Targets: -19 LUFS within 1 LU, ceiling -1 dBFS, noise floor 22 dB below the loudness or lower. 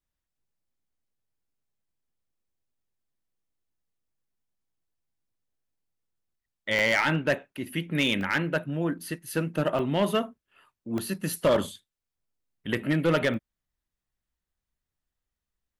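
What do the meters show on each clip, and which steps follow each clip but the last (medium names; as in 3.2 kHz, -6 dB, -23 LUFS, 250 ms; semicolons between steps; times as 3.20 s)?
clipped samples 0.4%; clipping level -16.5 dBFS; dropouts 6; longest dropout 1.5 ms; loudness -27.0 LUFS; peak level -16.5 dBFS; loudness target -19.0 LUFS
-> clip repair -16.5 dBFS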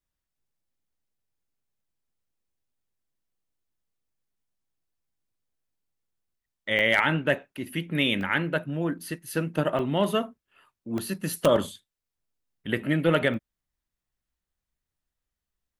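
clipped samples 0.0%; dropouts 6; longest dropout 1.5 ms
-> interpolate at 6.79/8.21/9.79/10.98/11.56/13.34 s, 1.5 ms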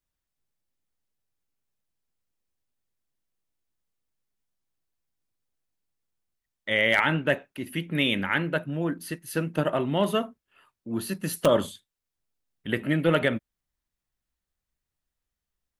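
dropouts 0; loudness -26.5 LUFS; peak level -7.5 dBFS; loudness target -19.0 LUFS
-> trim +7.5 dB; peak limiter -1 dBFS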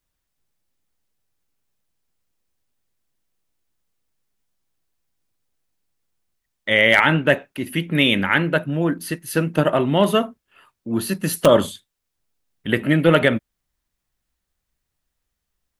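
loudness -19.0 LUFS; peak level -1.0 dBFS; noise floor -79 dBFS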